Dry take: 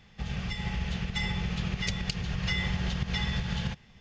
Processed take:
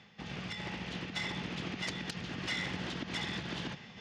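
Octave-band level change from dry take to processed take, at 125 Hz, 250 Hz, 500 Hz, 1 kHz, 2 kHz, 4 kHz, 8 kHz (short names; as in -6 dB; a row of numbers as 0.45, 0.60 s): -11.5 dB, -5.5 dB, -0.5 dB, -2.5 dB, -3.5 dB, -4.0 dB, n/a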